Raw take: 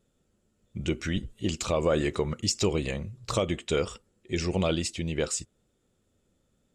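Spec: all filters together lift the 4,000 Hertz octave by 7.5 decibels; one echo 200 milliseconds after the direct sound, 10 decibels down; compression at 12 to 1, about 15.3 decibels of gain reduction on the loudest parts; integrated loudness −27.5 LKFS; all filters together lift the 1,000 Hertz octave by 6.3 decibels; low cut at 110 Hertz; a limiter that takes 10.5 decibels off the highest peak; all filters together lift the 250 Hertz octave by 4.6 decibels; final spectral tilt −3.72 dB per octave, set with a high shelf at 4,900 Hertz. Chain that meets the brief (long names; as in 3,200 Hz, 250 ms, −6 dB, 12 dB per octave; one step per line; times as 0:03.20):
high-pass filter 110 Hz
parametric band 250 Hz +6.5 dB
parametric band 1,000 Hz +7 dB
parametric band 4,000 Hz +6.5 dB
high-shelf EQ 4,900 Hz +6 dB
downward compressor 12 to 1, threshold −32 dBFS
brickwall limiter −26.5 dBFS
single-tap delay 200 ms −10 dB
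level +12 dB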